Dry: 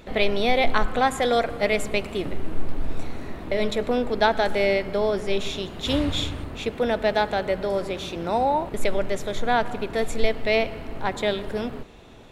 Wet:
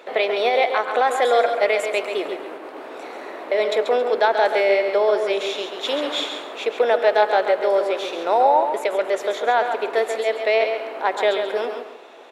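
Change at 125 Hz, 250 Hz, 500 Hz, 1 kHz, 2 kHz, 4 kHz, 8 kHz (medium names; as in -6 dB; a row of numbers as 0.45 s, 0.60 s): under -20 dB, -6.0 dB, +5.5 dB, +5.5 dB, +3.0 dB, +1.5 dB, no reading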